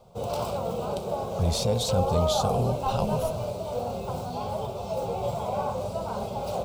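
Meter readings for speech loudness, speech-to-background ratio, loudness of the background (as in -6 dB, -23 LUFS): -28.5 LUFS, 2.0 dB, -30.5 LUFS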